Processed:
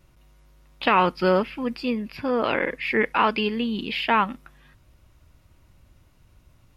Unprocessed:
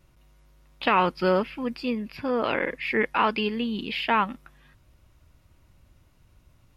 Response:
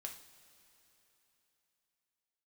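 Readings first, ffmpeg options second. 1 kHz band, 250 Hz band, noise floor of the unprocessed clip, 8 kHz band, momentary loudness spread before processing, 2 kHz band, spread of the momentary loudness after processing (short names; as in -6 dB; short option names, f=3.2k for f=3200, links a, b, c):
+2.5 dB, +2.0 dB, -61 dBFS, n/a, 8 LU, +2.5 dB, 8 LU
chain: -filter_complex "[0:a]asplit=2[a][b];[1:a]atrim=start_sample=2205,atrim=end_sample=3528[c];[b][c]afir=irnorm=-1:irlink=0,volume=-15.5dB[d];[a][d]amix=inputs=2:normalize=0,volume=1.5dB"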